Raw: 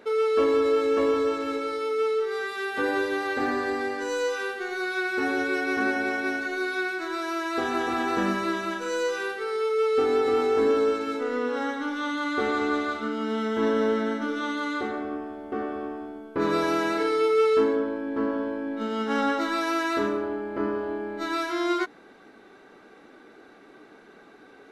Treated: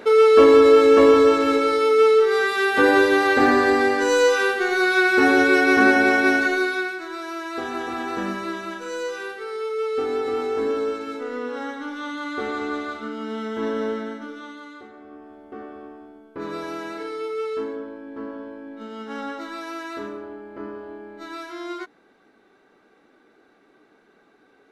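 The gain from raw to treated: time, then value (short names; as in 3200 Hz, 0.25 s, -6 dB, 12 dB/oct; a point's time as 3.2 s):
6.46 s +10 dB
7.03 s -2 dB
13.88 s -2 dB
14.92 s -14.5 dB
15.34 s -7 dB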